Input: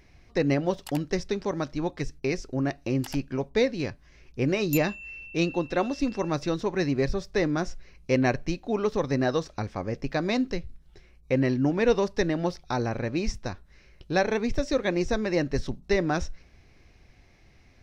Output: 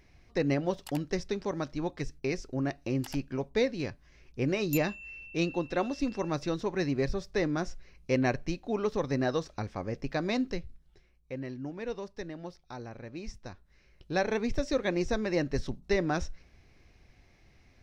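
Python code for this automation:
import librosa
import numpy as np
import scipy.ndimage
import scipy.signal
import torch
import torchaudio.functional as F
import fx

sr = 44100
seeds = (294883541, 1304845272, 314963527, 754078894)

y = fx.gain(x, sr, db=fx.line((10.59, -4.0), (11.37, -14.5), (13.0, -14.5), (14.36, -3.5)))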